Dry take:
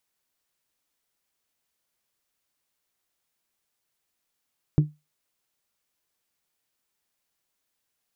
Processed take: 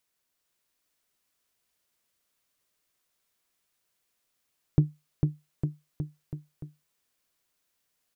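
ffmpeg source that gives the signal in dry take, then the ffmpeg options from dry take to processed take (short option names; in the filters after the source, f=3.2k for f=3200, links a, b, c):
-f lavfi -i "aevalsrc='0.282*pow(10,-3*t/0.22)*sin(2*PI*150*t)+0.1*pow(10,-3*t/0.135)*sin(2*PI*300*t)+0.0355*pow(10,-3*t/0.119)*sin(2*PI*360*t)+0.0126*pow(10,-3*t/0.102)*sin(2*PI*450*t)+0.00447*pow(10,-3*t/0.083)*sin(2*PI*600*t)':d=0.89:s=44100"
-filter_complex "[0:a]bandreject=f=830:w=12,asplit=2[a][b];[b]aecho=0:1:450|855|1220|1548|1843:0.631|0.398|0.251|0.158|0.1[c];[a][c]amix=inputs=2:normalize=0"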